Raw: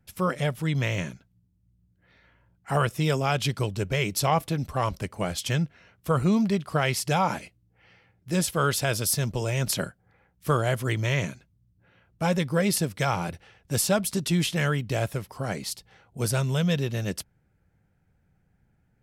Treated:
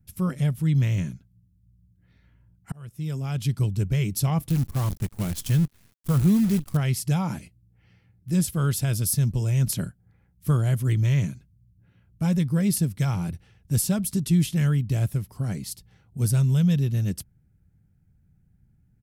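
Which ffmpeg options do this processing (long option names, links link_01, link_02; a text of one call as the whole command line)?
ffmpeg -i in.wav -filter_complex "[0:a]asettb=1/sr,asplit=3[link_01][link_02][link_03];[link_01]atrim=end=4.494[link_04];[link_02]atrim=start=4.49:end=6.77,asetpts=PTS-STARTPTS,afade=type=in:duration=0.004:curve=qsin,afade=type=out:start_time=2.276:duration=0.004:curve=qsin,acrusher=bits=6:dc=4:mix=0:aa=0.000001[link_05];[link_03]atrim=start=6.766[link_06];[link_04][link_05]acrossfade=duration=0.004:curve1=hsin:curve2=qsin[link_07];[link_07][link_06]acrossfade=duration=0.004:curve1=qsin:curve2=hsin,asplit=2[link_08][link_09];[link_08]atrim=end=2.72,asetpts=PTS-STARTPTS,afade=type=out:start_time=2.716:duration=0.004:curve=hsin[link_10];[link_09]atrim=start=2.72,asetpts=PTS-STARTPTS,afade=type=in:duration=0.97[link_11];[link_10][link_11]concat=n=2:v=0:a=1,firequalizer=gain_entry='entry(130,0);entry(520,-17);entry(11000,-5)':delay=0.05:min_phase=1,volume=6.5dB" out.wav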